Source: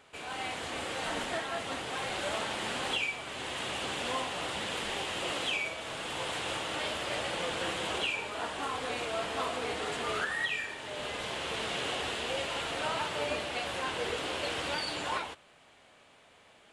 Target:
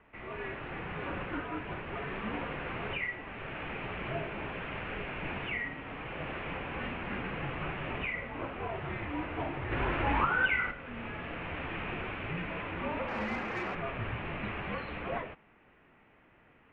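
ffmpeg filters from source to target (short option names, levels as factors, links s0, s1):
-filter_complex "[0:a]asplit=3[s0][s1][s2];[s0]afade=t=out:st=9.71:d=0.02[s3];[s1]acontrast=75,afade=t=in:st=9.71:d=0.02,afade=t=out:st=10.7:d=0.02[s4];[s2]afade=t=in:st=10.7:d=0.02[s5];[s3][s4][s5]amix=inputs=3:normalize=0,highpass=f=200:t=q:w=0.5412,highpass=f=200:t=q:w=1.307,lowpass=f=2900:t=q:w=0.5176,lowpass=f=2900:t=q:w=0.7071,lowpass=f=2900:t=q:w=1.932,afreqshift=-370,asettb=1/sr,asplit=3[s6][s7][s8];[s6]atrim=end=13.084[s9];[s7]atrim=start=13.08:end=13.75,asetpts=PTS-STARTPTS,afade=t=in:d=0.004:c=qsin,afade=t=out:st=0.666:d=0.004:c=qsin,asplit=2[s10][s11];[s11]highpass=f=720:p=1,volume=7.08,asoftclip=type=tanh:threshold=0.075[s12];[s10][s12]amix=inputs=2:normalize=0,lowpass=f=1300:p=1,volume=0.501[s13];[s8]atrim=start=13.746[s14];[s9][s13]acrossfade=d=0.004:c1=hsin:c2=qsin[s15];[s15][s14]acrossfade=d=0.004:c1=qsin:c2=hsin,volume=0.841"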